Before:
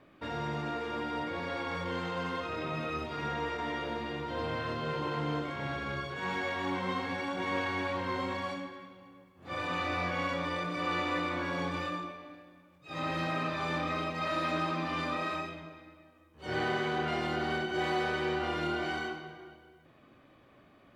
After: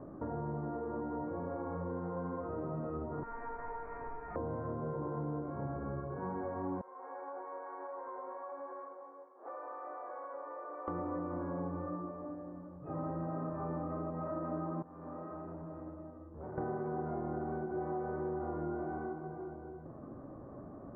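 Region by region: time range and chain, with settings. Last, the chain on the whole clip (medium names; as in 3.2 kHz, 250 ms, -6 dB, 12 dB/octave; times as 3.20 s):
3.23–4.36 s: high-pass 700 Hz 6 dB/octave + frequency inversion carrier 2.8 kHz
6.81–10.88 s: Bessel high-pass 670 Hz, order 8 + compression 5:1, threshold -46 dBFS
14.82–16.58 s: compression 4:1, threshold -47 dBFS + transformer saturation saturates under 1.3 kHz
whole clip: Bessel low-pass 720 Hz, order 8; compression 3:1, threshold -55 dBFS; trim +13.5 dB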